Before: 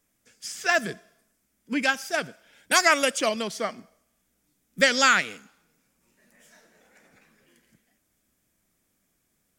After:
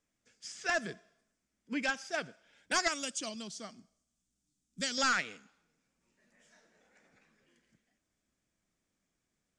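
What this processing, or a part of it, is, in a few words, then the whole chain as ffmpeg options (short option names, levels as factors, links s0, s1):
synthesiser wavefolder: -filter_complex "[0:a]asettb=1/sr,asplit=3[s0][s1][s2];[s0]atrim=end=2.884[s3];[s1]atrim=start=2.88:end=4.98,asetpts=PTS-STARTPTS,afade=t=in:d=0.004:c=qsin,afade=t=out:st=2.096:d=0.004:c=qsin,equalizer=f=500:t=o:w=1:g=-11,equalizer=f=1000:t=o:w=1:g=-6,equalizer=f=2000:t=o:w=1:g=-11,equalizer=f=8000:t=o:w=1:g=5[s4];[s2]atrim=start=4.976[s5];[s3][s4]acrossfade=d=0.004:c1=hsin:c2=qsin[s6];[s6][s5]acrossfade=d=0.004:c1=qsin:c2=hsin,aeval=exprs='0.237*(abs(mod(val(0)/0.237+3,4)-2)-1)':c=same,lowpass=f=7800:w=0.5412,lowpass=f=7800:w=1.3066,volume=0.376"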